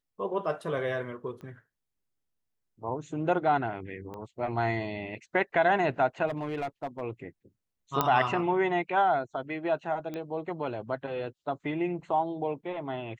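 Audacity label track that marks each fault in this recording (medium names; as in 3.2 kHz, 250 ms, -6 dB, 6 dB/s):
1.410000	1.410000	pop -34 dBFS
4.140000	4.140000	pop -29 dBFS
6.270000	7.020000	clipped -28 dBFS
8.010000	8.010000	pop -10 dBFS
10.140000	10.140000	pop -24 dBFS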